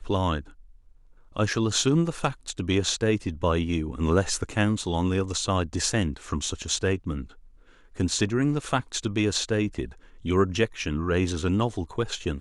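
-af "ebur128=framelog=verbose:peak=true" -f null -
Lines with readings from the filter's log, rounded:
Integrated loudness:
  I:         -26.3 LUFS
  Threshold: -36.8 LUFS
Loudness range:
  LRA:         2.5 LU
  Threshold: -46.7 LUFS
  LRA low:   -28.0 LUFS
  LRA high:  -25.5 LUFS
True peak:
  Peak:       -8.7 dBFS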